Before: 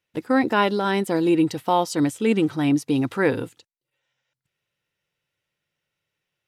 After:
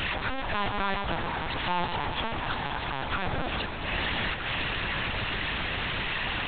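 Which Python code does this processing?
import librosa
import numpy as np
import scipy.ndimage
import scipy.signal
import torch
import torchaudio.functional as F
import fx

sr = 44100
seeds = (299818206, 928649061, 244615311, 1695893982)

y = np.sign(x) * np.sqrt(np.mean(np.square(x)))
y = scipy.signal.sosfilt(scipy.signal.ellip(4, 1.0, 50, 490.0, 'highpass', fs=sr, output='sos'), y)
y = fx.rider(y, sr, range_db=10, speed_s=2.0)
y = fx.echo_opening(y, sr, ms=132, hz=750, octaves=1, feedback_pct=70, wet_db=-3)
y = fx.lpc_vocoder(y, sr, seeds[0], excitation='pitch_kept', order=8)
y = F.gain(torch.from_numpy(y), -3.0).numpy()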